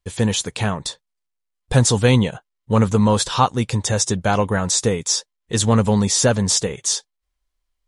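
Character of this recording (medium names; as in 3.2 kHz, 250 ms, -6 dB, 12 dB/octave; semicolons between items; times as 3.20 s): noise floor -79 dBFS; spectral tilt -4.5 dB/octave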